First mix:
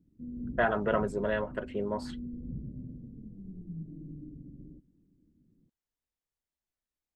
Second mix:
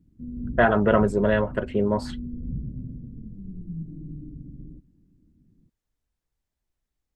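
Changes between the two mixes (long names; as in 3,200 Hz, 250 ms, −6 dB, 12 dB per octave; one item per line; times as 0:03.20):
speech +7.0 dB
master: add low-shelf EQ 190 Hz +11.5 dB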